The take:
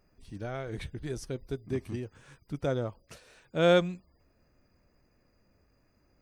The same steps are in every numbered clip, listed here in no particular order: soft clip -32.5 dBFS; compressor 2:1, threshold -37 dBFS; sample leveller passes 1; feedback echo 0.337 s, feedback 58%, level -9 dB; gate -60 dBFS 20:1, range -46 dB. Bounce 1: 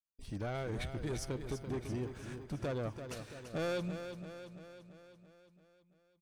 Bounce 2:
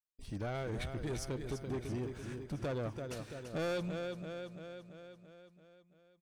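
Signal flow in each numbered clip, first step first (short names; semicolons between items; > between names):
gate > compressor > sample leveller > soft clip > feedback echo; compressor > gate > sample leveller > feedback echo > soft clip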